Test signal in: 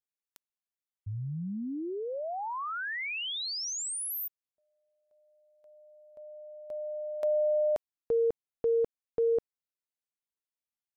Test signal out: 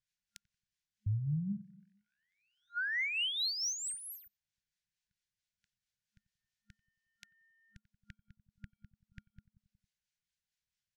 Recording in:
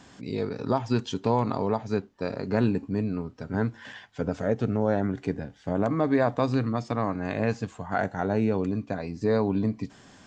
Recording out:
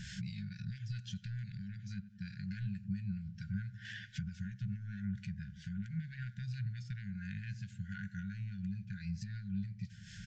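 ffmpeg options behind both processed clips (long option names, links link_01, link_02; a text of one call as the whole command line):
ffmpeg -i in.wav -filter_complex "[0:a]lowshelf=frequency=230:gain=7.5,asplit=2[link_01][link_02];[link_02]adelay=91,lowpass=frequency=990:poles=1,volume=-17dB,asplit=2[link_03][link_04];[link_04]adelay=91,lowpass=frequency=990:poles=1,volume=0.54,asplit=2[link_05][link_06];[link_06]adelay=91,lowpass=frequency=990:poles=1,volume=0.54,asplit=2[link_07][link_08];[link_08]adelay=91,lowpass=frequency=990:poles=1,volume=0.54,asplit=2[link_09][link_10];[link_10]adelay=91,lowpass=frequency=990:poles=1,volume=0.54[link_11];[link_01][link_03][link_05][link_07][link_09][link_11]amix=inputs=6:normalize=0,asoftclip=type=tanh:threshold=-13dB,equalizer=frequency=6200:width_type=o:width=1.4:gain=7,acompressor=threshold=-36dB:ratio=16:attack=2.5:release=401:knee=6:detection=rms,acrossover=split=1300[link_12][link_13];[link_12]aeval=exprs='val(0)*(1-0.5/2+0.5/2*cos(2*PI*4.5*n/s))':channel_layout=same[link_14];[link_13]aeval=exprs='val(0)*(1-0.5/2-0.5/2*cos(2*PI*4.5*n/s))':channel_layout=same[link_15];[link_14][link_15]amix=inputs=2:normalize=0,adynamicsmooth=sensitivity=7:basefreq=5800,afftfilt=real='re*(1-between(b*sr/4096,210,1400))':imag='im*(1-between(b*sr/4096,210,1400))':win_size=4096:overlap=0.75,volume=7.5dB" out.wav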